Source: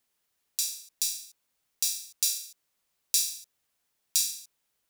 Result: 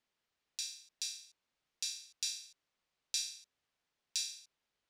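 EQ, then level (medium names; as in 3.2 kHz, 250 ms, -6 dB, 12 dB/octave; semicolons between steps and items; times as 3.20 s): low-pass 4.6 kHz 12 dB/octave; -3.5 dB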